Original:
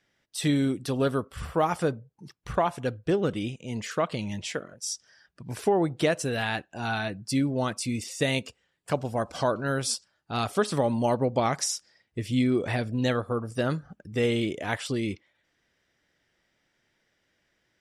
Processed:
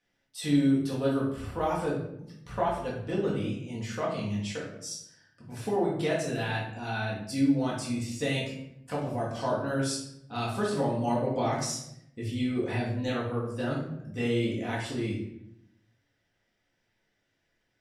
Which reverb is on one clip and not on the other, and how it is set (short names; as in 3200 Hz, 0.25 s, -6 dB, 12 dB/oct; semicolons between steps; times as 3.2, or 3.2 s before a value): shoebox room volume 180 m³, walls mixed, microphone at 1.9 m; gain -10.5 dB